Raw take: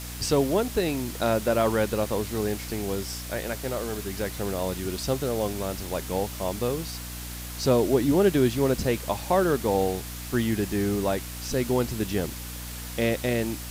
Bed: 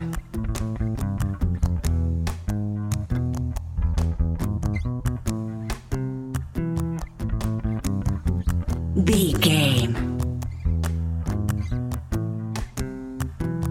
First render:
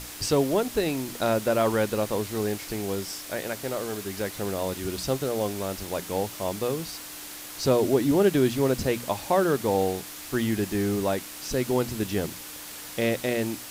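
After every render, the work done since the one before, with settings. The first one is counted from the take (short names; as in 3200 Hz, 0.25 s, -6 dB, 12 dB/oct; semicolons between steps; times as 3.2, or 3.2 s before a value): notches 60/120/180/240 Hz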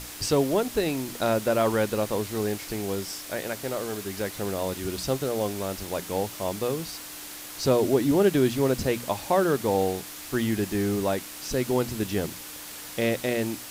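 nothing audible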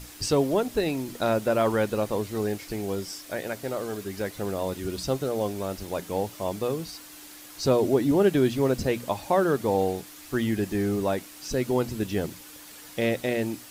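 denoiser 7 dB, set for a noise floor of -40 dBFS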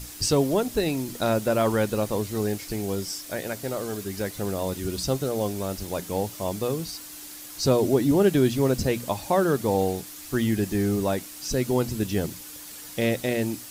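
tone controls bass +4 dB, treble +6 dB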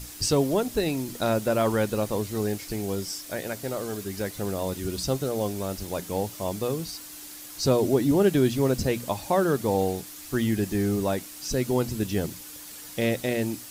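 gain -1 dB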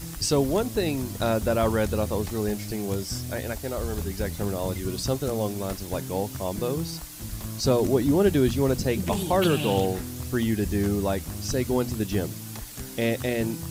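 add bed -10 dB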